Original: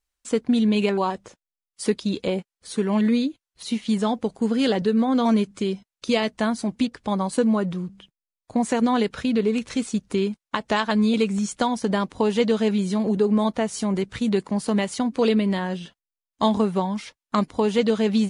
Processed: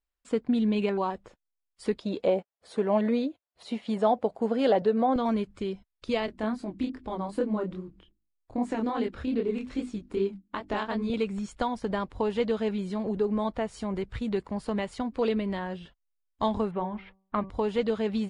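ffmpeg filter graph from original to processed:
-filter_complex "[0:a]asettb=1/sr,asplit=3[a][b][c];[a]atrim=end=2.004[d];[b]atrim=start=2:end=5.16,asetpts=PTS-STARTPTS,afade=t=in:d=0.004:c=qsin,afade=t=out:st=3.156:d=0.004:c=qsin,highpass=140,equalizer=f=650:w=1.5:g=11.5[e];[c]atrim=start=5.156[f];[d][e]acrossfade=d=0.004:c1=hsin:c2=qsin[g];[g][f]acrossfade=d=0.004:c1=qsin:c2=hsin,asettb=1/sr,asplit=3[h][i][j];[h]atrim=end=6.264[k];[i]atrim=start=6.26:end=11.1,asetpts=PTS-STARTPTS,afade=t=in:d=0.004:c=qsin,afade=t=out:st=4.836:d=0.004:c=qsin,equalizer=f=310:w=2.1:g=9.5,bandreject=f=50:t=h:w=6,bandreject=f=100:t=h:w=6,bandreject=f=150:t=h:w=6,bandreject=f=200:t=h:w=6,bandreject=f=250:t=h:w=6,bandreject=f=300:t=h:w=6,bandreject=f=350:t=h:w=6,flanger=delay=20:depth=7.9:speed=2.5[l];[j]atrim=start=11.096[m];[k][l]acrossfade=d=0.004:c1=hsin:c2=qsin[n];[n][m]acrossfade=d=0.004:c1=qsin:c2=hsin,asettb=1/sr,asplit=3[o][p][q];[o]atrim=end=16.714[r];[p]atrim=start=16.71:end=17.5,asetpts=PTS-STARTPTS,afade=t=in:d=0.004:c=qsin,afade=t=out:st=0.786:d=0.004:c=qsin,lowpass=f=2.9k:w=0.5412,lowpass=f=2.9k:w=1.3066,bandreject=f=191.9:t=h:w=4,bandreject=f=383.8:t=h:w=4,bandreject=f=575.7:t=h:w=4,bandreject=f=767.6:t=h:w=4,bandreject=f=959.5:t=h:w=4,bandreject=f=1.1514k:t=h:w=4[s];[q]atrim=start=17.496[t];[r][s]acrossfade=d=0.004:c1=hsin:c2=qsin[u];[u][t]acrossfade=d=0.004:c1=qsin:c2=hsin,aemphasis=mode=reproduction:type=75kf,bandreject=f=6.1k:w=8.9,asubboost=boost=8:cutoff=63,volume=-4.5dB"

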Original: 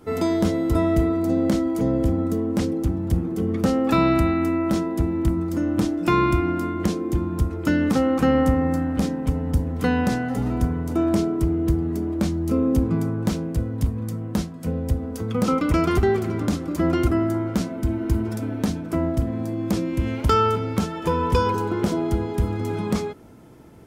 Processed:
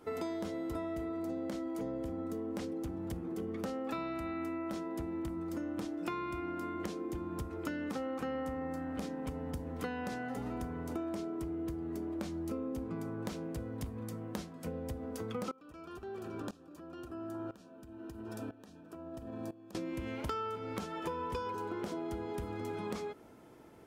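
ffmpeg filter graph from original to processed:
-filter_complex "[0:a]asettb=1/sr,asplit=3[a][b][c];[a]atrim=end=15.514[d];[b]atrim=start=15.51:end=19.75,asetpts=PTS-STARTPTS,afade=t=in:d=0.004:c=qsin,afade=t=out:st=4.236:d=0.004:c=qsin,acompressor=threshold=-24dB:ratio=6:attack=3.2:release=140:knee=1:detection=peak,asuperstop=centerf=2100:order=20:qfactor=6,aeval=exprs='val(0)*pow(10,-19*if(lt(mod(-1*n/s,1),2*abs(-1)/1000),1-mod(-1*n/s,1)/(2*abs(-1)/1000),(mod(-1*n/s,1)-2*abs(-1)/1000)/(1-2*abs(-1)/1000))/20)':c=same[e];[c]atrim=start=19.746[f];[d][e]acrossfade=d=0.004:c1=hsin:c2=qsin[g];[g][f]acrossfade=d=0.004:c1=qsin:c2=hsin,bass=f=250:g=-10,treble=f=4k:g=-3,acompressor=threshold=-30dB:ratio=6,volume=-5.5dB"

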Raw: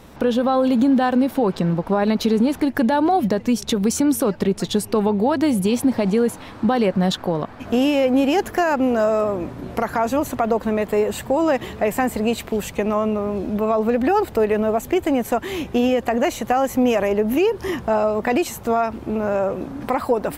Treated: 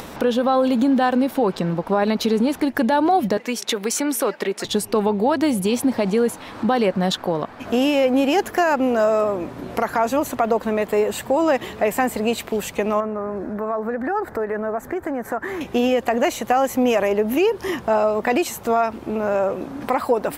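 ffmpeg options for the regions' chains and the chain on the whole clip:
-filter_complex "[0:a]asettb=1/sr,asplit=3[a][b][c];[a]atrim=end=3.374[d];[b]atrim=start=3.37:end=4.65,asetpts=PTS-STARTPTS,afade=t=in:d=0.004:c=qsin,afade=t=out:st=1.276:d=0.004:c=qsin,highpass=340,equalizer=f=2k:t=o:w=0.84:g=6[e];[c]atrim=start=4.646[f];[d][e]acrossfade=d=0.004:c1=hsin:c2=qsin[g];[g][f]acrossfade=d=0.004:c1=qsin:c2=hsin,asettb=1/sr,asplit=3[h][i][j];[h]atrim=end=13.004[k];[i]atrim=start=13:end=15.61,asetpts=PTS-STARTPTS,afade=t=in:d=0.004:c=qsin,afade=t=out:st=2.606:d=0.004:c=qsin,acompressor=threshold=-24dB:ratio=2.5:attack=3.2:release=140:knee=1:detection=peak,highshelf=f=2.2k:t=q:w=3:g=-9[l];[j]atrim=start=15.606[m];[k][l]acrossfade=d=0.004:c1=hsin:c2=qsin[n];[n][m]acrossfade=d=0.004:c1=qsin:c2=hsin,lowshelf=f=170:g=-10,acompressor=mode=upward:threshold=-28dB:ratio=2.5,volume=1.5dB"

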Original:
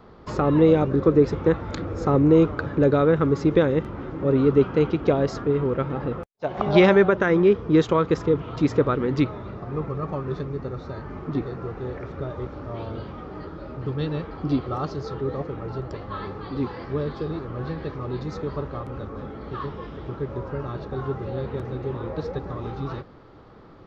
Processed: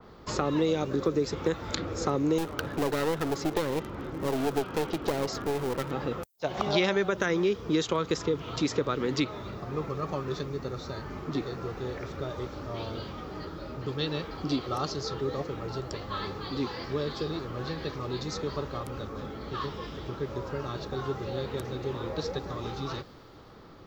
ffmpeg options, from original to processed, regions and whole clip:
-filter_complex "[0:a]asettb=1/sr,asplit=3[a][b][c];[a]atrim=end=2.384[d];[b]atrim=start=2.38:end=5.91,asetpts=PTS-STARTPTS,afade=t=in:d=0.004:c=qsin,afade=t=out:st=3.526:d=0.004:c=qsin,highshelf=f=3.4k:g=-8.5,aeval=exprs='clip(val(0),-1,0.0447)':c=same[e];[c]atrim=start=5.906[f];[d][e]acrossfade=d=0.004:c1=hsin:c2=qsin[g];[g][f]acrossfade=d=0.004:c1=qsin:c2=hsin,aemphasis=mode=production:type=75fm,acrossover=split=240|4800[h][i][j];[h]acompressor=threshold=-35dB:ratio=4[k];[i]acompressor=threshold=-23dB:ratio=4[l];[j]acompressor=threshold=-47dB:ratio=4[m];[k][l][m]amix=inputs=3:normalize=0,adynamicequalizer=threshold=0.00355:dfrequency=2800:dqfactor=0.7:tfrequency=2800:tqfactor=0.7:attack=5:release=100:ratio=0.375:range=3.5:mode=boostabove:tftype=highshelf,volume=-2dB"

